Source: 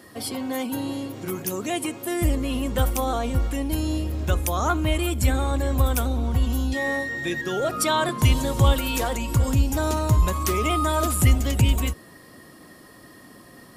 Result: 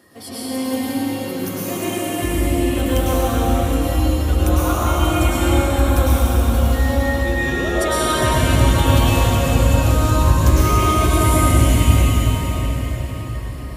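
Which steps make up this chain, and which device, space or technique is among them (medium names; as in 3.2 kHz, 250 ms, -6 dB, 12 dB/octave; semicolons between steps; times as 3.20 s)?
cathedral (reverberation RT60 5.8 s, pre-delay 96 ms, DRR -10.5 dB); trim -5 dB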